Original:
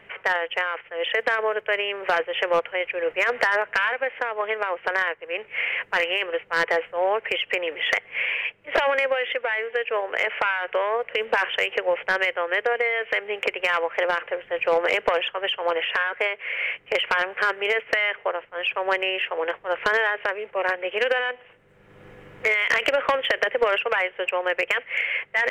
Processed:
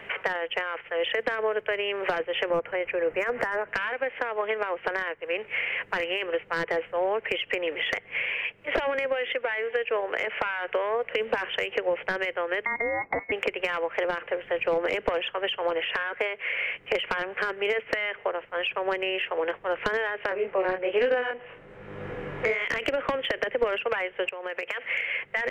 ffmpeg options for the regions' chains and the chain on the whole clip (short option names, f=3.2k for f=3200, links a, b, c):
-filter_complex "[0:a]asettb=1/sr,asplit=3[a][b][c];[a]atrim=end=2.504[d];[b]atrim=start=2.5:end=3.69,asetpts=PTS-STARTPTS,afade=t=in:d=0.004:c=qsin,afade=t=out:st=1.186:d=0.004:c=qsin,agate=range=-33dB:threshold=-40dB:ratio=3:release=100:detection=peak,equalizer=f=3.9k:t=o:w=0.96:g=-13.5,acompressor=mode=upward:threshold=-23dB:ratio=2.5:attack=3.2:release=140:knee=2.83:detection=peak[e];[c]atrim=start=3.686[f];[d][e]acrossfade=d=0.004:c1=hsin:c2=qsin[g];[g][f]acrossfade=d=0.004:c1=qsin:c2=hsin,asettb=1/sr,asplit=3[h][i][j];[h]atrim=end=12.654[k];[i]atrim=start=12.65:end=13.32,asetpts=PTS-STARTPTS,afade=t=in:d=0.004:c=qsin,afade=t=out:st=0.666:d=0.004:c=qsin,agate=range=-33dB:threshold=-31dB:ratio=3:release=100:detection=peak,lowpass=f=2.2k:t=q:w=0.5098,lowpass=f=2.2k:t=q:w=0.6013,lowpass=f=2.2k:t=q:w=0.9,lowpass=f=2.2k:t=q:w=2.563,afreqshift=-2600[l];[j]atrim=start=13.316[m];[k][l]acrossfade=d=0.004:c1=hsin:c2=qsin[n];[n][m]acrossfade=d=0.004:c1=qsin:c2=hsin,asettb=1/sr,asplit=3[o][p][q];[o]atrim=end=20.294[r];[p]atrim=start=20.29:end=22.65,asetpts=PTS-STARTPTS,afade=t=in:d=0.004:c=qsin,afade=t=out:st=2.356:d=0.004:c=qsin,aemphasis=mode=reproduction:type=75kf,acontrast=78,flanger=delay=19.5:depth=7.7:speed=1.2[s];[q]atrim=start=22.646[t];[r][s]acrossfade=d=0.004:c1=hsin:c2=qsin[u];[u][t]acrossfade=d=0.004:c1=qsin:c2=hsin,asettb=1/sr,asplit=3[v][w][x];[v]atrim=end=24.294[y];[w]atrim=start=24.29:end=24.9,asetpts=PTS-STARTPTS,afade=t=in:d=0.004:c=qsin,afade=t=out:st=0.606:d=0.004:c=qsin,highpass=86,acompressor=threshold=-33dB:ratio=8:attack=3.2:release=140:knee=1:detection=peak[z];[x]atrim=start=24.896[aa];[y][z]acrossfade=d=0.004:c1=hsin:c2=qsin[ab];[ab][aa]acrossfade=d=0.004:c1=qsin:c2=hsin,bass=f=250:g=-3,treble=f=4k:g=-1,acrossover=split=310[ac][ad];[ad]acompressor=threshold=-35dB:ratio=6[ae];[ac][ae]amix=inputs=2:normalize=0,volume=7.5dB"